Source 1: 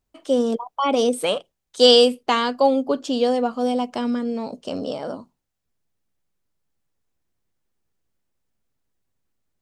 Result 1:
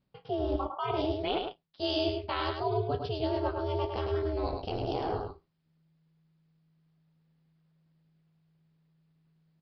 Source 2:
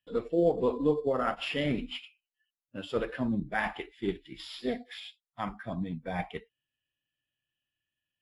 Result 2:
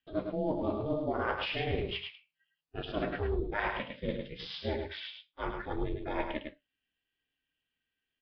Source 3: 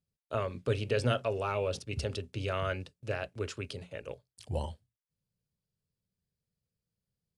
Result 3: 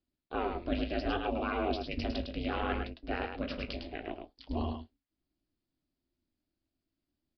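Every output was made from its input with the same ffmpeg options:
ffmpeg -i in.wav -af "areverse,acompressor=threshold=-30dB:ratio=8,areverse,flanger=delay=9.3:depth=9.9:regen=-51:speed=0.67:shape=sinusoidal,aeval=exprs='val(0)*sin(2*PI*160*n/s)':channel_layout=same,aresample=11025,aresample=44100,aecho=1:1:105:0.531,volume=8dB" out.wav

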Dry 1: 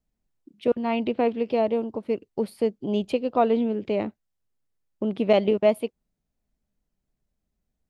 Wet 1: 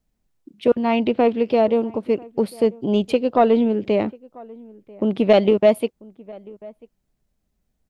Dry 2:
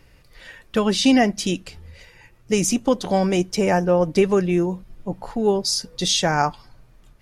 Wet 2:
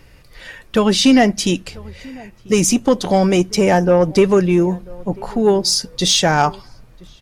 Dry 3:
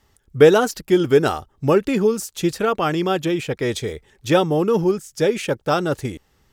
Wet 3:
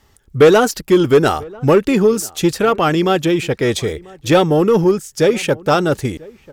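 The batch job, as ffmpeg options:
ffmpeg -i in.wav -filter_complex "[0:a]acontrast=88,asplit=2[link_01][link_02];[link_02]adelay=991.3,volume=-23dB,highshelf=frequency=4000:gain=-22.3[link_03];[link_01][link_03]amix=inputs=2:normalize=0,volume=-1dB" out.wav

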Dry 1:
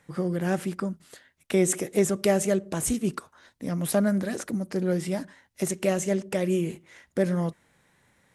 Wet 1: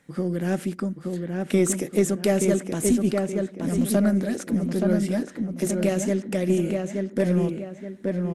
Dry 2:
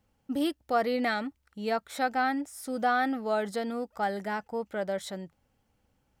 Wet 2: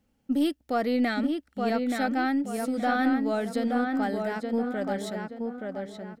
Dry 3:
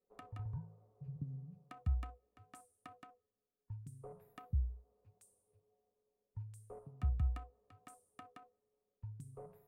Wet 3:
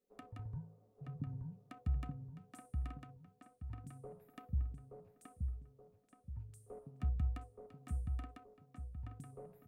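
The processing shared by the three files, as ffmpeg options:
ffmpeg -i in.wav -filter_complex "[0:a]equalizer=frequency=100:width_type=o:width=0.67:gain=-4,equalizer=frequency=250:width_type=o:width=0.67:gain=7,equalizer=frequency=1000:width_type=o:width=0.67:gain=-5,asplit=2[link_01][link_02];[link_02]adelay=875,lowpass=frequency=2600:poles=1,volume=-3.5dB,asplit=2[link_03][link_04];[link_04]adelay=875,lowpass=frequency=2600:poles=1,volume=0.39,asplit=2[link_05][link_06];[link_06]adelay=875,lowpass=frequency=2600:poles=1,volume=0.39,asplit=2[link_07][link_08];[link_08]adelay=875,lowpass=frequency=2600:poles=1,volume=0.39,asplit=2[link_09][link_10];[link_10]adelay=875,lowpass=frequency=2600:poles=1,volume=0.39[link_11];[link_01][link_03][link_05][link_07][link_09][link_11]amix=inputs=6:normalize=0,aeval=exprs='0.422*(cos(1*acos(clip(val(0)/0.422,-1,1)))-cos(1*PI/2))+0.0133*(cos(4*acos(clip(val(0)/0.422,-1,1)))-cos(4*PI/2))':channel_layout=same" out.wav

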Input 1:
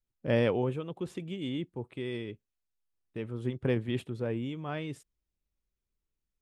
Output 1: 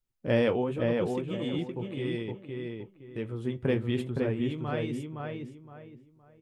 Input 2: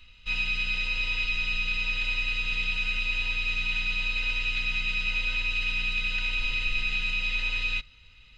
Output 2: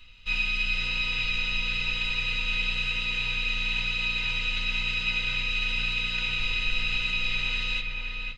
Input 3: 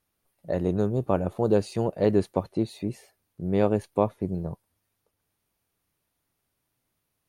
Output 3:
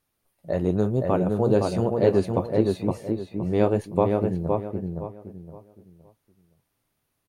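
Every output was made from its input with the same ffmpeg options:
ffmpeg -i in.wav -filter_complex "[0:a]flanger=delay=7.2:depth=5.7:regen=-53:speed=0.98:shape=sinusoidal,asplit=2[link_01][link_02];[link_02]adelay=516,lowpass=frequency=2300:poles=1,volume=-3dB,asplit=2[link_03][link_04];[link_04]adelay=516,lowpass=frequency=2300:poles=1,volume=0.3,asplit=2[link_05][link_06];[link_06]adelay=516,lowpass=frequency=2300:poles=1,volume=0.3,asplit=2[link_07][link_08];[link_08]adelay=516,lowpass=frequency=2300:poles=1,volume=0.3[link_09];[link_01][link_03][link_05][link_07][link_09]amix=inputs=5:normalize=0,volume=5.5dB" out.wav

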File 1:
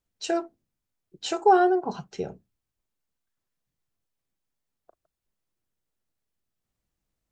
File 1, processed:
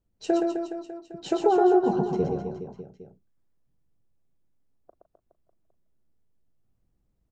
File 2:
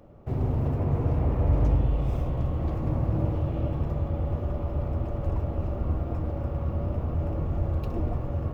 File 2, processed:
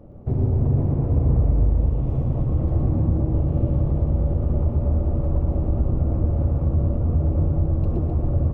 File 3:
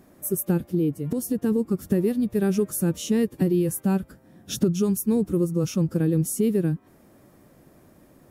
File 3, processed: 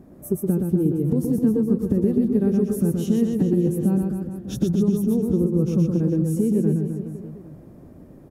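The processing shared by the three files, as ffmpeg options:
ffmpeg -i in.wav -filter_complex "[0:a]tiltshelf=frequency=870:gain=9,acompressor=threshold=-18dB:ratio=6,asplit=2[link_01][link_02];[link_02]aecho=0:1:120|258|416.7|599.2|809.1:0.631|0.398|0.251|0.158|0.1[link_03];[link_01][link_03]amix=inputs=2:normalize=0" out.wav

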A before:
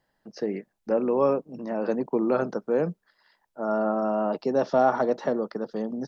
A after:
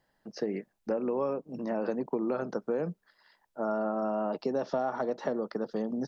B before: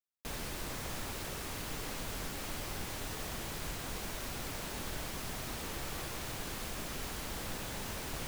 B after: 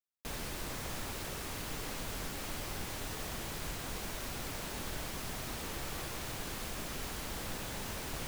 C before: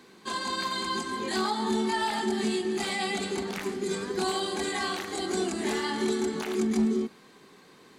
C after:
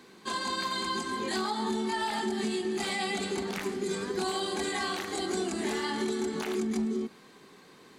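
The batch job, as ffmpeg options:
ffmpeg -i in.wav -af "acompressor=threshold=-27dB:ratio=6" out.wav

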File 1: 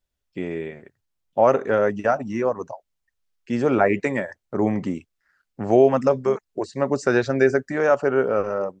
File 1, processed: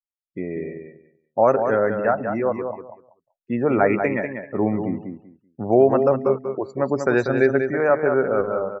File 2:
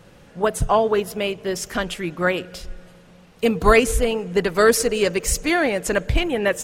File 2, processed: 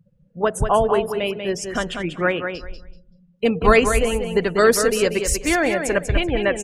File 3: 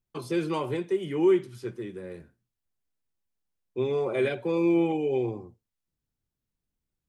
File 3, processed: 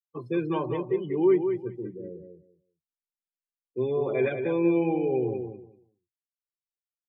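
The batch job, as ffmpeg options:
ffmpeg -i in.wav -filter_complex "[0:a]afftdn=noise_reduction=36:noise_floor=-35,asplit=2[link_01][link_02];[link_02]aecho=0:1:191|382|573:0.447|0.0849|0.0161[link_03];[link_01][link_03]amix=inputs=2:normalize=0" out.wav

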